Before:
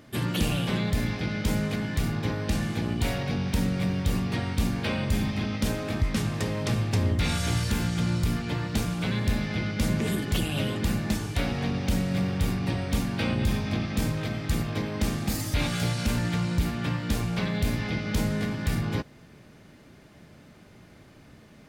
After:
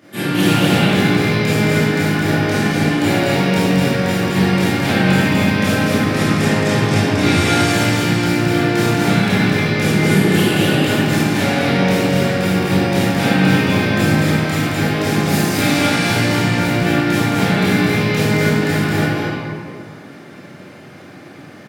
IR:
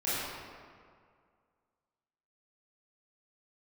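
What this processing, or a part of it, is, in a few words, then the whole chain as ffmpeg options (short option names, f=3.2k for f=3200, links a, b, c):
stadium PA: -filter_complex "[0:a]highpass=f=130:w=0.5412,highpass=f=130:w=1.3066,equalizer=f=1.8k:t=o:w=0.77:g=3,aecho=1:1:218.7|250.7:0.708|0.355[a];[1:a]atrim=start_sample=2205[b];[a][b]afir=irnorm=-1:irlink=0,volume=4dB"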